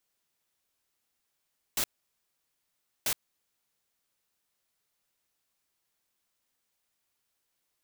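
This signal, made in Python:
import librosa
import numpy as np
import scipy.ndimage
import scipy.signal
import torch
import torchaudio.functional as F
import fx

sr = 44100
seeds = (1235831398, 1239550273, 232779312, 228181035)

y = fx.noise_burst(sr, seeds[0], colour='white', on_s=0.07, off_s=1.22, bursts=2, level_db=-28.5)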